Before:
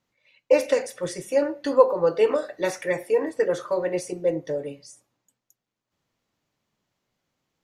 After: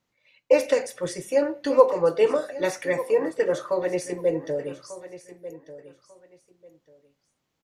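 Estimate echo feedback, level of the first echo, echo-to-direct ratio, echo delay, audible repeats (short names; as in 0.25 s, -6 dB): 22%, -15.0 dB, -15.0 dB, 1.193 s, 2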